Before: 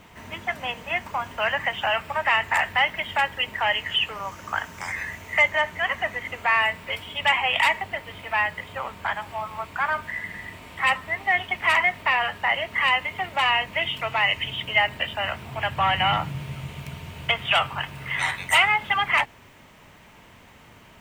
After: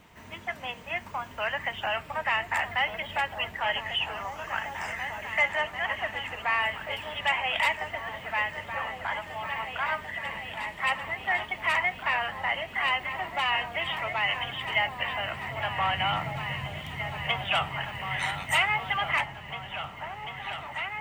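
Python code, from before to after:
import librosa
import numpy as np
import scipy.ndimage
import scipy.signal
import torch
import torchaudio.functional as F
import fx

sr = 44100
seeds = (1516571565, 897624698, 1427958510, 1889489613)

y = fx.wow_flutter(x, sr, seeds[0], rate_hz=2.1, depth_cents=17.0)
y = fx.echo_opening(y, sr, ms=744, hz=200, octaves=2, feedback_pct=70, wet_db=-3)
y = fx.quant_dither(y, sr, seeds[1], bits=12, dither='none', at=(18.1, 18.64))
y = y * 10.0 ** (-6.0 / 20.0)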